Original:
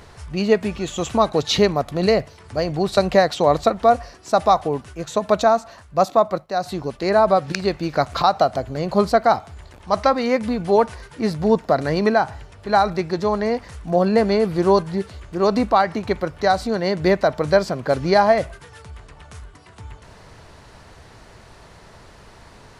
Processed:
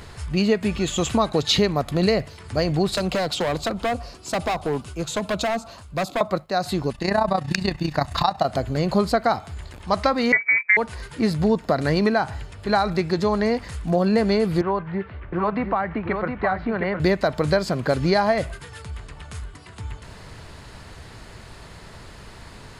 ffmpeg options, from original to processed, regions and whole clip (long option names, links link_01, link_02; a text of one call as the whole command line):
ffmpeg -i in.wav -filter_complex "[0:a]asettb=1/sr,asplit=3[link_01][link_02][link_03];[link_01]atrim=end=2.954[link_04];[link_02]atrim=start=2.95:end=6.21,asetpts=PTS-STARTPTS,afade=type=in:duration=0.004:curve=qsin,afade=type=out:start_time=3.256:duration=0.004:curve=qsin,equalizer=frequency=1800:width=3.4:gain=-10,acrossover=split=150|540[link_05][link_06][link_07];[link_05]acompressor=threshold=-39dB:ratio=4[link_08];[link_06]acompressor=threshold=-23dB:ratio=4[link_09];[link_07]acompressor=threshold=-22dB:ratio=4[link_10];[link_08][link_09][link_10]amix=inputs=3:normalize=0,asoftclip=type=hard:threshold=-20.5dB[link_11];[link_03]atrim=start=6.206[link_12];[link_04][link_11]acrossfade=duration=0.004:curve1=hsin:curve2=qsin[link_13];[link_13][link_12]acrossfade=duration=0.004:curve1=qsin:curve2=hsin,asettb=1/sr,asplit=3[link_14][link_15][link_16];[link_14]atrim=end=6.924[link_17];[link_15]atrim=start=6.92:end=8.45,asetpts=PTS-STARTPTS,afade=type=in:duration=0.004:curve=qsin,afade=type=out:start_time=1.526:duration=0.004:curve=qsin,aecho=1:1:1.1:0.47,atrim=end_sample=67473,tremolo=f=30:d=0.75[link_18];[link_16]atrim=start=8.446[link_19];[link_17][link_18]acrossfade=duration=0.004:curve1=hsin:curve2=qsin[link_20];[link_20][link_19]acrossfade=duration=0.004:curve1=qsin:curve2=hsin,asettb=1/sr,asplit=3[link_21][link_22][link_23];[link_21]atrim=end=10.324[link_24];[link_22]atrim=start=10.32:end=10.77,asetpts=PTS-STARTPTS,afade=type=in:duration=0.004:curve=qsin,afade=type=out:start_time=0.446:duration=0.004:curve=qsin,agate=range=-34dB:threshold=-25dB:ratio=16:release=100:detection=peak,acontrast=26,lowpass=frequency=2100:width_type=q:width=0.5098,lowpass=frequency=2100:width_type=q:width=0.6013,lowpass=frequency=2100:width_type=q:width=0.9,lowpass=frequency=2100:width_type=q:width=2.563,afreqshift=-2500[link_25];[link_23]atrim=start=10.766[link_26];[link_24][link_25]acrossfade=duration=0.004:curve1=hsin:curve2=qsin[link_27];[link_27][link_26]acrossfade=duration=0.004:curve1=qsin:curve2=hsin,asettb=1/sr,asplit=3[link_28][link_29][link_30];[link_28]atrim=end=14.614[link_31];[link_29]atrim=start=14.61:end=17,asetpts=PTS-STARTPTS,afade=type=in:duration=0.004:curve=qsin,afade=type=out:start_time=2.386:duration=0.004:curve=qsin,lowpass=frequency=2300:width=0.5412,lowpass=frequency=2300:width=1.3066,acrossover=split=180|670[link_32][link_33][link_34];[link_32]acompressor=threshold=-39dB:ratio=4[link_35];[link_33]acompressor=threshold=-30dB:ratio=4[link_36];[link_34]acompressor=threshold=-22dB:ratio=4[link_37];[link_35][link_36][link_37]amix=inputs=3:normalize=0,aecho=1:1:713:0.501,atrim=end_sample=105399[link_38];[link_30]atrim=start=16.996[link_39];[link_31][link_38]acrossfade=duration=0.004:curve1=hsin:curve2=qsin[link_40];[link_40][link_39]acrossfade=duration=0.004:curve1=qsin:curve2=hsin,equalizer=frequency=690:width_type=o:width=2:gain=-5,bandreject=frequency=5800:width=9.6,acompressor=threshold=-22dB:ratio=3,volume=5dB" out.wav